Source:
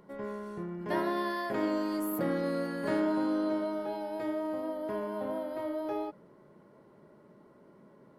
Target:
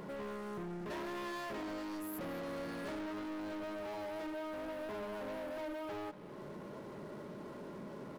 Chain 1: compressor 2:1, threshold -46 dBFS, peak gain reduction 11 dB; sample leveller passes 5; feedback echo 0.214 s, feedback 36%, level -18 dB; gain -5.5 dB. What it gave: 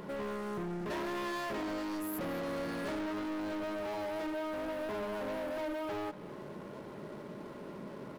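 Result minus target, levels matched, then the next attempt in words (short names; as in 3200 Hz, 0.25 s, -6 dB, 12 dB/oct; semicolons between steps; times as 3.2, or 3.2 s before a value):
compressor: peak gain reduction -4.5 dB
compressor 2:1, threshold -55.5 dBFS, peak gain reduction 16 dB; sample leveller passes 5; feedback echo 0.214 s, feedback 36%, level -18 dB; gain -5.5 dB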